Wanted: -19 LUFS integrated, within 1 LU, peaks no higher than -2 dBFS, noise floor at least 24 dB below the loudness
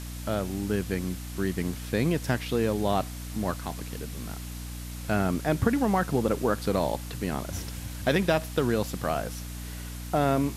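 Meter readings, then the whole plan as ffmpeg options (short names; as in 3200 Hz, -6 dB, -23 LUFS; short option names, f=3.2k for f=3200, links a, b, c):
hum 60 Hz; harmonics up to 300 Hz; hum level -35 dBFS; noise floor -38 dBFS; noise floor target -53 dBFS; loudness -29.0 LUFS; peak -9.5 dBFS; loudness target -19.0 LUFS
-> -af "bandreject=f=60:t=h:w=4,bandreject=f=120:t=h:w=4,bandreject=f=180:t=h:w=4,bandreject=f=240:t=h:w=4,bandreject=f=300:t=h:w=4"
-af "afftdn=nr=15:nf=-38"
-af "volume=10dB,alimiter=limit=-2dB:level=0:latency=1"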